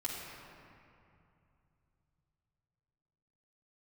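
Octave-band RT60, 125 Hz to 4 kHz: 4.6, 3.3, 2.6, 2.6, 2.2, 1.5 s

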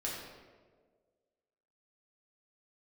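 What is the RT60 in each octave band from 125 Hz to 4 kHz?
1.5, 1.7, 1.9, 1.4, 1.1, 0.85 s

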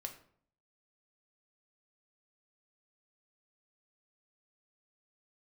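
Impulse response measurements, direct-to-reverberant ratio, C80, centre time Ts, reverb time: 3.5 dB, 14.5 dB, 12 ms, 0.60 s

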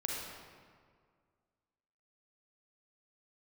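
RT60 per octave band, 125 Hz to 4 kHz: 2.1, 2.1, 2.0, 1.9, 1.5, 1.2 s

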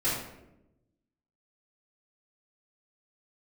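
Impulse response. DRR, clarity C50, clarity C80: -12.5 dB, 1.5 dB, 5.0 dB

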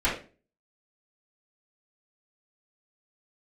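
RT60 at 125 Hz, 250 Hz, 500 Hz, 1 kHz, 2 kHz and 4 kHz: 0.50, 0.45, 0.40, 0.35, 0.30, 0.30 s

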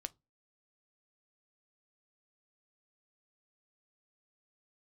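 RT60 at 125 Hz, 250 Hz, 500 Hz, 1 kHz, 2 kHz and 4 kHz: 0.30, 0.35, 0.25, 0.20, 0.15, 0.15 s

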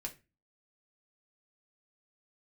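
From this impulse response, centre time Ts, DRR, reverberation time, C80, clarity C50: 9 ms, 1.0 dB, 0.25 s, 22.0 dB, 15.0 dB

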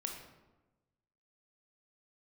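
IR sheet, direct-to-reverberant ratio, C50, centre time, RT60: 2.0 dB, 4.5 dB, 35 ms, 1.1 s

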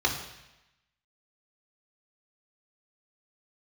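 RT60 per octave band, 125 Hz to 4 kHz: 1.0, 0.95, 0.90, 0.95, 1.0, 1.0 s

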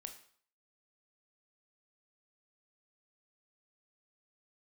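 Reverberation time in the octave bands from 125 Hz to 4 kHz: 0.50, 0.50, 0.50, 0.55, 0.50, 0.50 s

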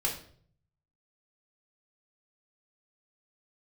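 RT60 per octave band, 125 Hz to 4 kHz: 1.1, 0.70, 0.60, 0.45, 0.45, 0.45 s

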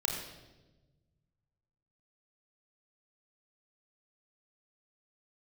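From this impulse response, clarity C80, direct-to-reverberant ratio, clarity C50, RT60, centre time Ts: 5.5 dB, 0.0 dB, 4.0 dB, 1.1 s, 46 ms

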